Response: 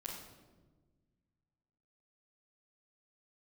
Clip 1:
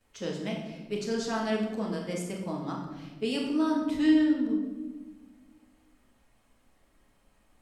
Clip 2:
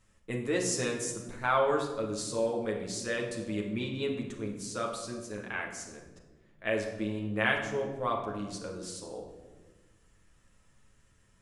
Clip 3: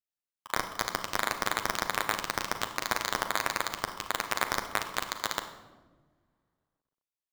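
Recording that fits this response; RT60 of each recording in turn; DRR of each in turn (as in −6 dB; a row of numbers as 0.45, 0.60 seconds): 1; 1.3, 1.3, 1.4 seconds; −11.0, −1.0, 4.0 decibels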